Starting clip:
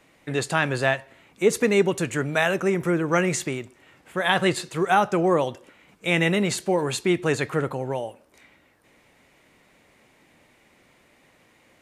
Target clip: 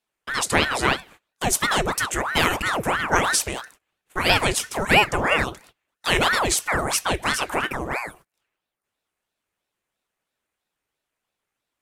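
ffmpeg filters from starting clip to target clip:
ffmpeg -i in.wav -filter_complex "[0:a]agate=range=-27dB:threshold=-46dB:ratio=16:detection=peak,equalizer=frequency=960:width=0.95:gain=13,crystalizer=i=6.5:c=0,lowshelf=frequency=240:width_type=q:width=1.5:gain=9.5,asplit=2[link_01][link_02];[link_02]asoftclip=type=tanh:threshold=-2.5dB,volume=-11dB[link_03];[link_01][link_03]amix=inputs=2:normalize=0,aeval=exprs='val(0)*sin(2*PI*940*n/s+940*0.8/3*sin(2*PI*3*n/s))':channel_layout=same,volume=-8dB" out.wav

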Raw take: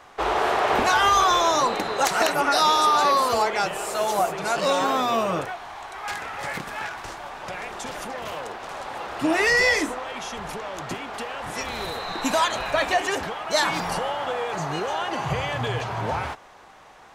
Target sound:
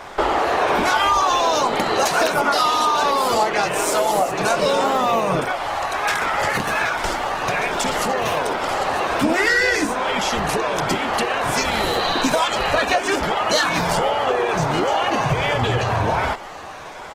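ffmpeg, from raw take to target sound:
ffmpeg -i in.wav -filter_complex "[0:a]afftfilt=real='re*pow(10,6/40*sin(2*PI*(1.6*log(max(b,1)*sr/1024/100)/log(2)-(-1.3)*(pts-256)/sr)))':imag='im*pow(10,6/40*sin(2*PI*(1.6*log(max(b,1)*sr/1024/100)/log(2)-(-1.3)*(pts-256)/sr)))':win_size=1024:overlap=0.75,asplit=2[link_01][link_02];[link_02]asoftclip=type=tanh:threshold=-18dB,volume=-4dB[link_03];[link_01][link_03]amix=inputs=2:normalize=0,asplit=4[link_04][link_05][link_06][link_07];[link_05]asetrate=33038,aresample=44100,atempo=1.33484,volume=-10dB[link_08];[link_06]asetrate=35002,aresample=44100,atempo=1.25992,volume=-9dB[link_09];[link_07]asetrate=37084,aresample=44100,atempo=1.18921,volume=-17dB[link_10];[link_04][link_08][link_09][link_10]amix=inputs=4:normalize=0,acompressor=threshold=-26dB:ratio=4,volume=8.5dB" -ar 48000 -c:a libopus -b:a 16k out.opus

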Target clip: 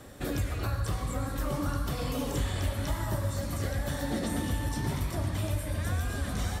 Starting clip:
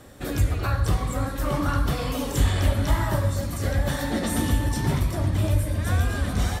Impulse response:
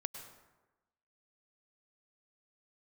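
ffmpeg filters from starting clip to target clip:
-filter_complex "[0:a]acrossover=split=680|4700[link_01][link_02][link_03];[link_01]acompressor=threshold=-28dB:ratio=4[link_04];[link_02]acompressor=threshold=-40dB:ratio=4[link_05];[link_03]acompressor=threshold=-43dB:ratio=4[link_06];[link_04][link_05][link_06]amix=inputs=3:normalize=0,asplit=2[link_07][link_08];[1:a]atrim=start_sample=2205[link_09];[link_08][link_09]afir=irnorm=-1:irlink=0,volume=3dB[link_10];[link_07][link_10]amix=inputs=2:normalize=0,volume=-7.5dB"

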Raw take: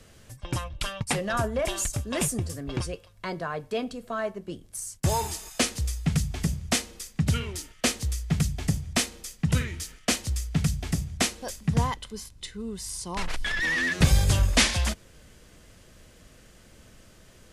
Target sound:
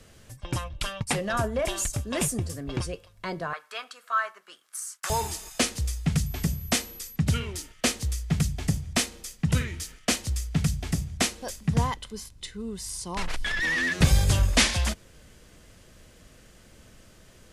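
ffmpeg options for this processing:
ffmpeg -i in.wav -filter_complex "[0:a]asettb=1/sr,asplit=3[link_01][link_02][link_03];[link_01]atrim=end=3.534[link_04];[link_02]atrim=start=3.53:end=5.1,asetpts=PTS-STARTPTS,afade=type=in:duration=0.004:curve=qsin,afade=type=out:start_time=1.566:duration=0.004:curve=qsin,highpass=frequency=1300:width_type=q:width=3.5[link_05];[link_03]atrim=start=5.096[link_06];[link_04][link_05]acrossfade=duration=0.004:curve1=hsin:curve2=qsin[link_07];[link_07][link_06]acrossfade=duration=0.004:curve1=qsin:curve2=hsin,asettb=1/sr,asplit=3[link_08][link_09][link_10];[link_08]atrim=end=6.264[link_11];[link_09]atrim=start=6.26:end=7.16,asetpts=PTS-STARTPTS,afade=type=in:duration=0.004:curve=qsin,afade=type=out:start_time=0.896:duration=0.004:curve=qsin,aeval=exprs='val(0)+0.00708*sin(2*PI*12000*n/s)':channel_layout=same[link_12];[link_10]atrim=start=7.156[link_13];[link_11][link_12]acrossfade=duration=0.004:curve1=hsin:curve2=qsin[link_14];[link_14][link_13]acrossfade=duration=0.004:curve1=qsin:curve2=hsin" out.wav

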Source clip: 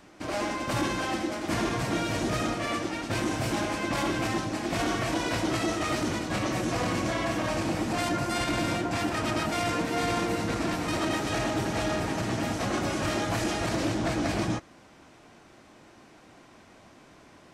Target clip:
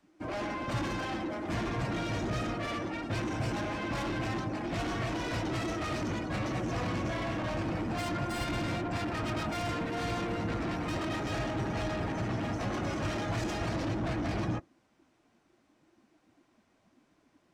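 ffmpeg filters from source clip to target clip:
ffmpeg -i in.wav -filter_complex "[0:a]afftdn=noise_reduction=17:noise_floor=-39,acrossover=split=150[link_01][link_02];[link_02]asoftclip=type=tanh:threshold=-32dB[link_03];[link_01][link_03]amix=inputs=2:normalize=0" out.wav

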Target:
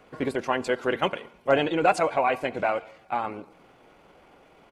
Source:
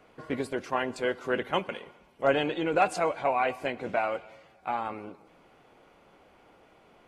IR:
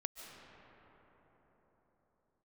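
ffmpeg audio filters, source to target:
-af "bandreject=frequency=228.5:width_type=h:width=4,bandreject=frequency=457:width_type=h:width=4,bandreject=frequency=685.5:width_type=h:width=4,bandreject=frequency=914:width_type=h:width=4,bandreject=frequency=1142.5:width_type=h:width=4,bandreject=frequency=1371:width_type=h:width=4,bandreject=frequency=1599.5:width_type=h:width=4,atempo=1.5,volume=4dB"

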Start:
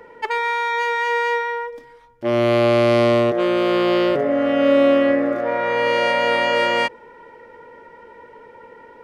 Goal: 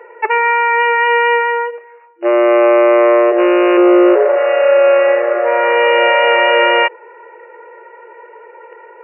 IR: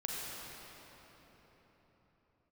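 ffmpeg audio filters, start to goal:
-filter_complex "[0:a]asplit=2[link_01][link_02];[link_02]acrusher=bits=4:mix=0:aa=0.5,volume=-5.5dB[link_03];[link_01][link_03]amix=inputs=2:normalize=0,asettb=1/sr,asplit=3[link_04][link_05][link_06];[link_04]atrim=end=3.774[link_07];[link_05]atrim=start=3.77:end=4.36,asetpts=PTS-STARTPTS,afade=type=in:duration=0.004:curve=qsin,afade=type=out:start_time=0.586:duration=0.004:curve=qsin,aemphasis=mode=reproduction:type=riaa[link_08];[link_06]atrim=start=4.356[link_09];[link_07][link_08]acrossfade=duration=0.004:curve1=hsin:curve2=qsin[link_10];[link_10][link_09]acrossfade=duration=0.004:curve1=qsin:curve2=hsin,acontrast=87,afftfilt=real='re*between(b*sr/4096,340,2900)':imag='im*between(b*sr/4096,340,2900)':win_size=4096:overlap=0.75,volume=-1.5dB"

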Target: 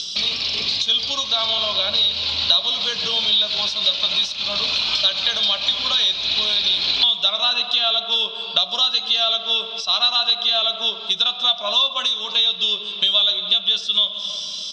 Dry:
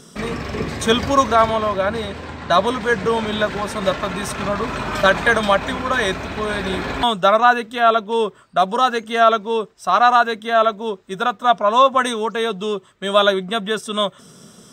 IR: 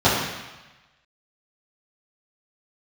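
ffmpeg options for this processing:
-filter_complex "[0:a]lowshelf=frequency=110:gain=5,asplit=2[link_01][link_02];[1:a]atrim=start_sample=2205,asetrate=33075,aresample=44100[link_03];[link_02][link_03]afir=irnorm=-1:irlink=0,volume=-32dB[link_04];[link_01][link_04]amix=inputs=2:normalize=0,aexciter=amount=11.9:drive=9.2:freq=2900,acompressor=threshold=-21dB:ratio=6,firequalizer=gain_entry='entry(390,0);entry(670,8);entry(2100,10);entry(4100,14);entry(8800,-28)':delay=0.05:min_phase=1,volume=-8dB"

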